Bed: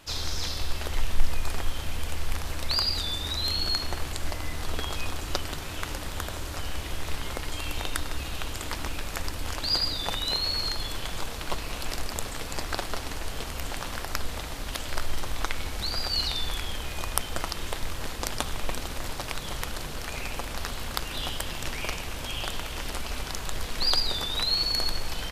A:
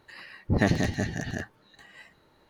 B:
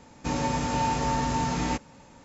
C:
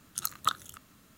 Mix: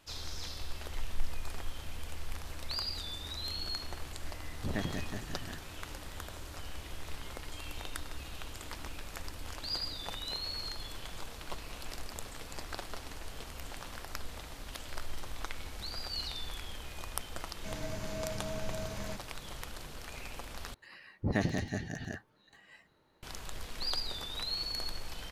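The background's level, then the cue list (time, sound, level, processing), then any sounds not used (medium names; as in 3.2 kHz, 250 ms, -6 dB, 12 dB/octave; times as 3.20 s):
bed -10.5 dB
4.14 s: add A -13 dB
17.39 s: add B -13 dB + frequency shift -260 Hz
20.74 s: replace with A -7.5 dB
not used: C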